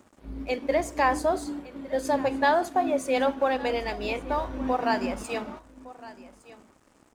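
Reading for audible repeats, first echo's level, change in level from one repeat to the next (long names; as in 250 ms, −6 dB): 1, −18.5 dB, repeats not evenly spaced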